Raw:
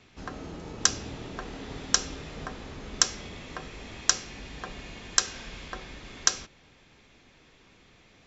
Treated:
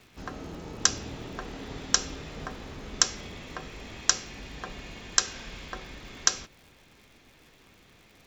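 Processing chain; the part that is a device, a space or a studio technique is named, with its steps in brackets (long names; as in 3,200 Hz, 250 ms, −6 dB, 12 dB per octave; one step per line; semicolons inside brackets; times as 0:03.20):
vinyl LP (surface crackle 130 per second −46 dBFS; pink noise bed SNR 35 dB)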